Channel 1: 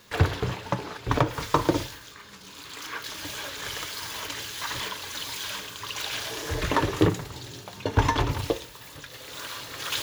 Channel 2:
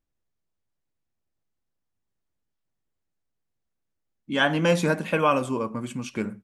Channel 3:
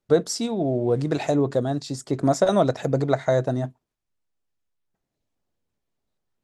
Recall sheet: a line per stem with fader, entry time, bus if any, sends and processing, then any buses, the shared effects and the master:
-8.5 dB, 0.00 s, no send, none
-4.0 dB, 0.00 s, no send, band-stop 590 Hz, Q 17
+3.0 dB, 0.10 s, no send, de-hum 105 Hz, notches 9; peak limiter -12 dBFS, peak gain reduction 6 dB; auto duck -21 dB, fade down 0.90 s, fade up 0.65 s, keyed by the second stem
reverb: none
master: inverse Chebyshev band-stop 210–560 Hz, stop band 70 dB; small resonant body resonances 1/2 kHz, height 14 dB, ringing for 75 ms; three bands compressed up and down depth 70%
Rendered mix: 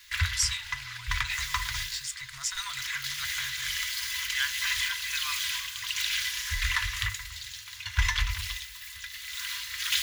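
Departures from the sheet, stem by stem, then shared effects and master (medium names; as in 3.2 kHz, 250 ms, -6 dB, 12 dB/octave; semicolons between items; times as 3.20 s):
stem 1 -8.5 dB -> +3.0 dB; master: missing three bands compressed up and down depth 70%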